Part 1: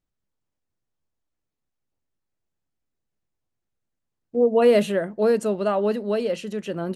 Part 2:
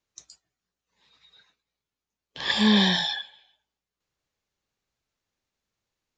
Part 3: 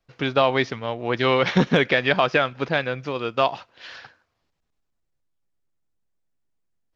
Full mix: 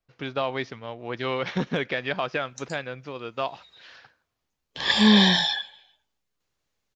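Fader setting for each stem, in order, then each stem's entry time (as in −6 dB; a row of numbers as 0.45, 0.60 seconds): muted, +3.0 dB, −8.5 dB; muted, 2.40 s, 0.00 s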